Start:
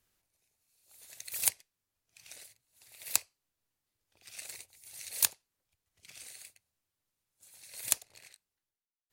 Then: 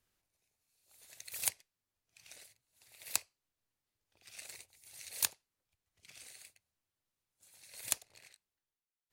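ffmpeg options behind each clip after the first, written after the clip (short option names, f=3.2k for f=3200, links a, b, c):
-af "highshelf=f=6.8k:g=-4.5,volume=-2.5dB"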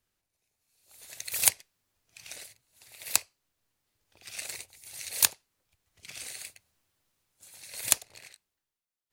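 -af "dynaudnorm=f=150:g=11:m=13.5dB"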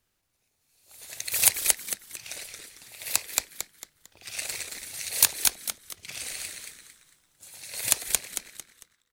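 -filter_complex "[0:a]asplit=5[a][b][c][d][e];[b]adelay=225,afreqshift=-150,volume=-5dB[f];[c]adelay=450,afreqshift=-300,volume=-14.4dB[g];[d]adelay=675,afreqshift=-450,volume=-23.7dB[h];[e]adelay=900,afreqshift=-600,volume=-33.1dB[i];[a][f][g][h][i]amix=inputs=5:normalize=0,alimiter=level_in=6dB:limit=-1dB:release=50:level=0:latency=1,volume=-1dB"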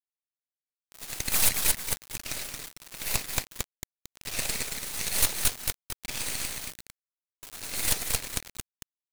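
-af "asoftclip=type=hard:threshold=-20dB,acrusher=bits=4:dc=4:mix=0:aa=0.000001,volume=7dB"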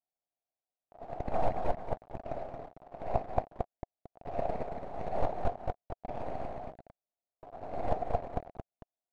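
-af "lowpass=f=700:t=q:w=6"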